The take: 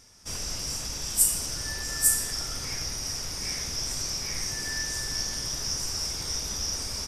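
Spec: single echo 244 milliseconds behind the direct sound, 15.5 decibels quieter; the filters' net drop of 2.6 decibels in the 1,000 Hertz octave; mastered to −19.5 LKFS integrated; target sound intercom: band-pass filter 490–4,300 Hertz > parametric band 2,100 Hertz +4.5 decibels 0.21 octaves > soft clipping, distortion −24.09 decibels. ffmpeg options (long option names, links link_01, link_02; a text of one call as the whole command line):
ffmpeg -i in.wav -af "highpass=490,lowpass=4300,equalizer=frequency=1000:width_type=o:gain=-3,equalizer=frequency=2100:width_type=o:width=0.21:gain=4.5,aecho=1:1:244:0.168,asoftclip=threshold=-25.5dB,volume=16dB" out.wav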